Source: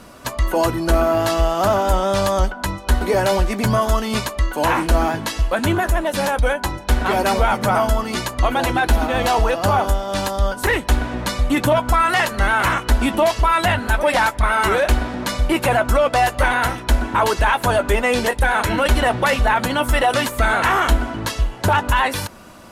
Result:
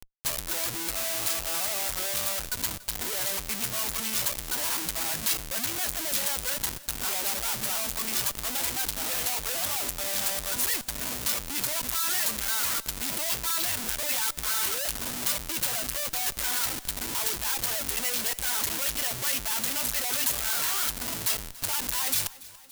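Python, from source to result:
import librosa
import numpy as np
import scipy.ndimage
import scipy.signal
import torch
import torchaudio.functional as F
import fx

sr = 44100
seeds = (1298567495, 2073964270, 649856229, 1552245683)

p1 = fx.dereverb_blind(x, sr, rt60_s=0.6)
p2 = fx.schmitt(p1, sr, flips_db=-32.0)
p3 = librosa.effects.preemphasis(p2, coef=0.9, zi=[0.0])
p4 = p3 + fx.echo_feedback(p3, sr, ms=285, feedback_pct=59, wet_db=-20.0, dry=0)
y = p4 * 10.0 ** (-2.0 / 20.0)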